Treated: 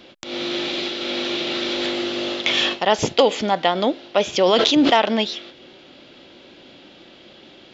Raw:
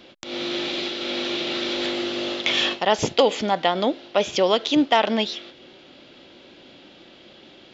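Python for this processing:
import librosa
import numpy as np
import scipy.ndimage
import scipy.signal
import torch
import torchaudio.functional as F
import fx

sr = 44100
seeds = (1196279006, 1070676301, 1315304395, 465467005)

y = fx.sustainer(x, sr, db_per_s=24.0, at=(4.4, 4.93))
y = y * librosa.db_to_amplitude(2.0)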